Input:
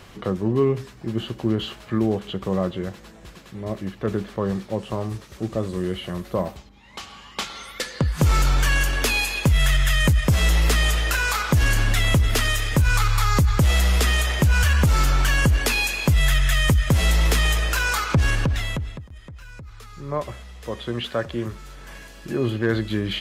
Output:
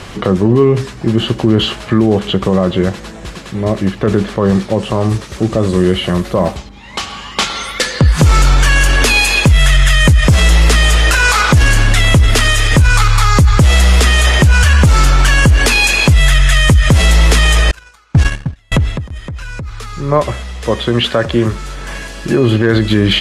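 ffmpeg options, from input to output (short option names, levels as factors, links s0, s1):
-filter_complex "[0:a]asettb=1/sr,asplit=3[s0][s1][s2];[s0]atrim=end=17.714[s3];[s1]atrim=start=17.71:end=18.72,asetpts=PTS-STARTPTS,afade=t=in:d=0.004:c=qsin,afade=t=out:st=1.006:d=0.004:c=qsin,agate=range=0.01:threshold=0.126:ratio=16:release=100:detection=peak[s4];[s2]atrim=start=18.716[s5];[s3][s4]acrossfade=d=0.004:c1=hsin:c2=qsin[s6];[s6][s5]acrossfade=d=0.004:c1=qsin:c2=hsin,lowpass=f=11000:w=0.5412,lowpass=f=11000:w=1.3066,alimiter=level_in=6.68:limit=0.891:release=50:level=0:latency=1,volume=0.891"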